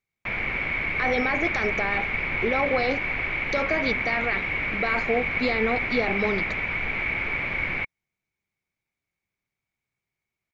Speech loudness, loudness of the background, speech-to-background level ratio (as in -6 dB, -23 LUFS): -28.0 LUFS, -26.0 LUFS, -2.0 dB